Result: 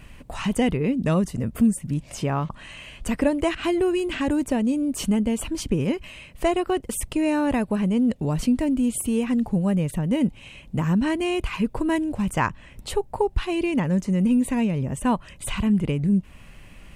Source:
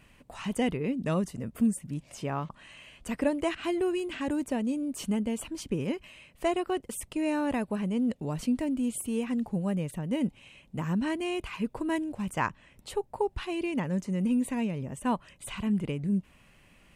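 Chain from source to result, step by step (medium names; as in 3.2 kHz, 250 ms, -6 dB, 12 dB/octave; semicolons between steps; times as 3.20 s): bass shelf 90 Hz +11 dB; in parallel at 0 dB: compression, threshold -33 dBFS, peak gain reduction 13 dB; on the sum: trim +3 dB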